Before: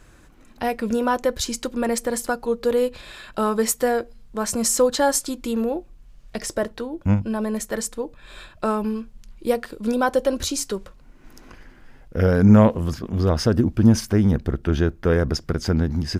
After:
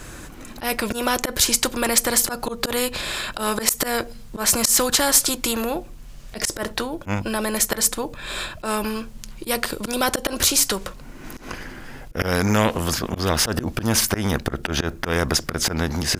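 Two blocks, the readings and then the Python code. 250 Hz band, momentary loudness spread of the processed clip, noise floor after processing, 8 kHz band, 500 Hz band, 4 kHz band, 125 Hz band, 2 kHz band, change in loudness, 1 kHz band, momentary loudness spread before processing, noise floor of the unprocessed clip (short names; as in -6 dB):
-5.0 dB, 18 LU, -40 dBFS, +8.0 dB, -4.0 dB, +9.5 dB, -6.0 dB, +5.5 dB, +0.5 dB, +0.5 dB, 12 LU, -49 dBFS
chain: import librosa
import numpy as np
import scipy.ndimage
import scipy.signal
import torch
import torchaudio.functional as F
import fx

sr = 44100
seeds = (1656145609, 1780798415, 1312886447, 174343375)

y = fx.high_shelf(x, sr, hz=5400.0, db=6.5)
y = fx.auto_swell(y, sr, attack_ms=117.0)
y = fx.spectral_comp(y, sr, ratio=2.0)
y = y * librosa.db_to_amplitude(1.5)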